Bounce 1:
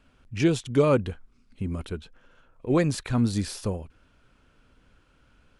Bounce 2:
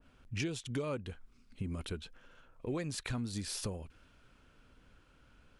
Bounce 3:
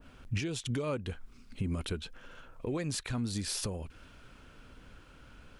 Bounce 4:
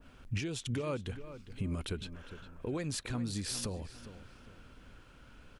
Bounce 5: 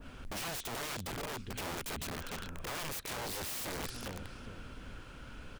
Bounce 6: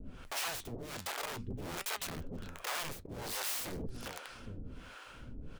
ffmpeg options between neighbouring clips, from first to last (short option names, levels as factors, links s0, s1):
-af "acompressor=threshold=0.0224:ratio=5,adynamicequalizer=threshold=0.00224:dfrequency=1700:dqfactor=0.7:tfrequency=1700:tqfactor=0.7:attack=5:release=100:ratio=0.375:range=2.5:mode=boostabove:tftype=highshelf,volume=0.75"
-af "alimiter=level_in=3.16:limit=0.0631:level=0:latency=1:release=372,volume=0.316,volume=2.82"
-filter_complex "[0:a]asplit=2[s0][s1];[s1]adelay=406,lowpass=f=3100:p=1,volume=0.237,asplit=2[s2][s3];[s3]adelay=406,lowpass=f=3100:p=1,volume=0.37,asplit=2[s4][s5];[s5]adelay=406,lowpass=f=3100:p=1,volume=0.37,asplit=2[s6][s7];[s7]adelay=406,lowpass=f=3100:p=1,volume=0.37[s8];[s0][s2][s4][s6][s8]amix=inputs=5:normalize=0,volume=0.794"
-af "acompressor=threshold=0.0112:ratio=12,aeval=exprs='(mod(126*val(0)+1,2)-1)/126':c=same,volume=2.37"
-filter_complex "[0:a]flanger=delay=4.4:depth=7.8:regen=75:speed=0.52:shape=triangular,acrossover=split=500[s0][s1];[s0]aeval=exprs='val(0)*(1-1/2+1/2*cos(2*PI*1.3*n/s))':c=same[s2];[s1]aeval=exprs='val(0)*(1-1/2-1/2*cos(2*PI*1.3*n/s))':c=same[s3];[s2][s3]amix=inputs=2:normalize=0,volume=2.66"